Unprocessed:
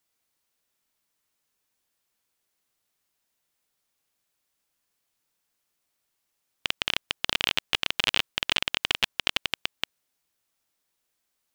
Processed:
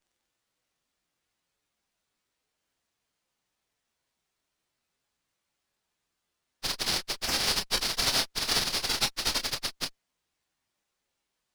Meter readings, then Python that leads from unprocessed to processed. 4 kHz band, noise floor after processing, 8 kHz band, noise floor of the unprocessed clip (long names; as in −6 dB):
−1.5 dB, −83 dBFS, +9.0 dB, −79 dBFS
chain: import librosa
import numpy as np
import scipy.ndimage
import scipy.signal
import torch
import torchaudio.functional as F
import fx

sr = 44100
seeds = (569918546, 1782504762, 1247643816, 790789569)

y = fx.partial_stretch(x, sr, pct=119)
y = fx.chorus_voices(y, sr, voices=6, hz=0.3, base_ms=27, depth_ms=3.8, mix_pct=30)
y = fx.running_max(y, sr, window=3)
y = y * 10.0 ** (8.5 / 20.0)